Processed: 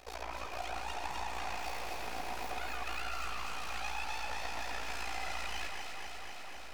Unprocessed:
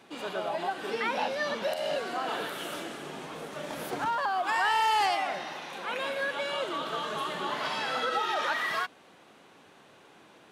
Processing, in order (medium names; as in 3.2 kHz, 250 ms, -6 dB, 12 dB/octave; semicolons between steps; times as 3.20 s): compression 5:1, threshold -41 dBFS, peak gain reduction 16 dB; half-wave rectifier; AM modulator 37 Hz, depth 95%; wide varispeed 1.56×; small resonant body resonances 750/2500 Hz, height 10 dB, ringing for 25 ms; on a send: echo whose repeats swap between lows and highs 125 ms, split 2.5 kHz, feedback 88%, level -3 dB; on the sum: trim +5.5 dB